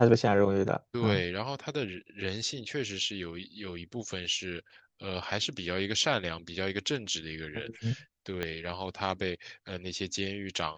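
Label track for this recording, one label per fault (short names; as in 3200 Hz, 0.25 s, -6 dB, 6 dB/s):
8.430000	8.430000	pop -18 dBFS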